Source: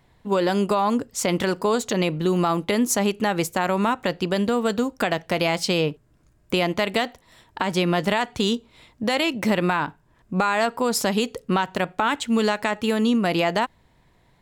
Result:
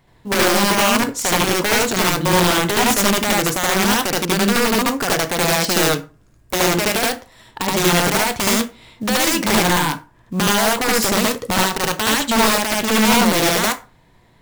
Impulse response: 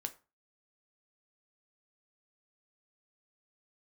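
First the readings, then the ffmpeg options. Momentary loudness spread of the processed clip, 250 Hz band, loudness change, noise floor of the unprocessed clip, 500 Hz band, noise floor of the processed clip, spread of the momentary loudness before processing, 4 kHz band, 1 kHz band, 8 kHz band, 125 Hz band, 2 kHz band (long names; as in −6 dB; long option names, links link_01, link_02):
6 LU, +3.5 dB, +6.5 dB, −60 dBFS, +3.0 dB, −53 dBFS, 4 LU, +9.5 dB, +5.5 dB, +13.0 dB, +4.5 dB, +8.5 dB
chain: -filter_complex "[0:a]aeval=exprs='(mod(5.96*val(0)+1,2)-1)/5.96':channel_layout=same,acrusher=bits=7:mode=log:mix=0:aa=0.000001,asplit=2[link_01][link_02];[1:a]atrim=start_sample=2205,adelay=74[link_03];[link_02][link_03]afir=irnorm=-1:irlink=0,volume=3.5dB[link_04];[link_01][link_04]amix=inputs=2:normalize=0,volume=2dB"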